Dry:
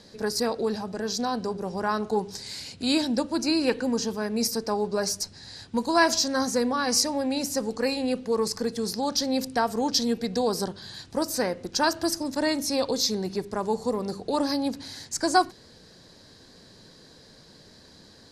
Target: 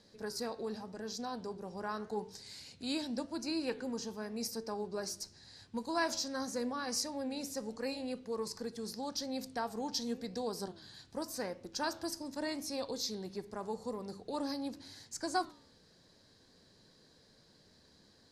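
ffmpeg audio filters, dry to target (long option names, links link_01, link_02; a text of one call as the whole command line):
ffmpeg -i in.wav -af "flanger=delay=8.8:depth=5.9:regen=86:speed=0.86:shape=sinusoidal,volume=-8dB" out.wav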